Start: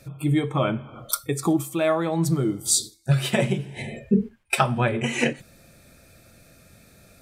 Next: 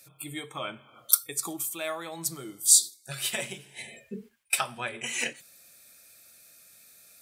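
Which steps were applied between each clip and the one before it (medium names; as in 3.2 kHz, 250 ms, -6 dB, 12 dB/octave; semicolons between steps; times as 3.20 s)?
tilt EQ +4.5 dB/octave; trim -10 dB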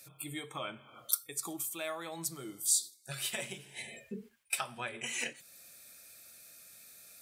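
compression 1.5:1, threshold -44 dBFS, peak gain reduction 11 dB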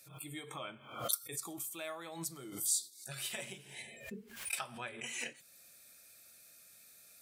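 swell ahead of each attack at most 90 dB/s; trim -4.5 dB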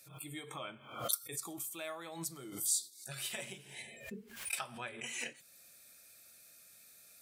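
no audible change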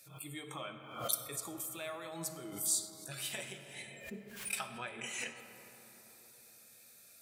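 reverberation RT60 4.1 s, pre-delay 15 ms, DRR 8 dB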